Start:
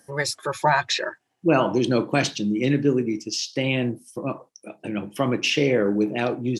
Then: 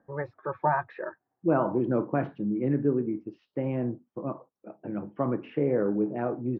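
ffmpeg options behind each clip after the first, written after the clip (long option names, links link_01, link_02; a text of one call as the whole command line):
ffmpeg -i in.wav -af "lowpass=frequency=1400:width=0.5412,lowpass=frequency=1400:width=1.3066,volume=-5dB" out.wav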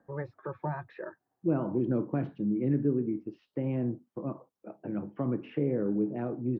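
ffmpeg -i in.wav -filter_complex "[0:a]acrossover=split=380|3000[link_01][link_02][link_03];[link_02]acompressor=threshold=-42dB:ratio=3[link_04];[link_01][link_04][link_03]amix=inputs=3:normalize=0" out.wav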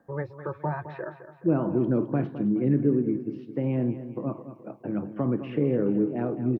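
ffmpeg -i in.wav -af "aecho=1:1:212|424|636|848|1060:0.251|0.113|0.0509|0.0229|0.0103,volume=4.5dB" out.wav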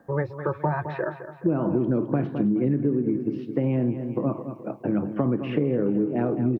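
ffmpeg -i in.wav -af "acompressor=threshold=-27dB:ratio=6,volume=7.5dB" out.wav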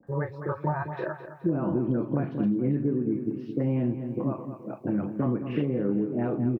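ffmpeg -i in.wav -filter_complex "[0:a]acrossover=split=500|2500[link_01][link_02][link_03];[link_02]adelay=30[link_04];[link_03]adelay=70[link_05];[link_01][link_04][link_05]amix=inputs=3:normalize=0,volume=-2dB" out.wav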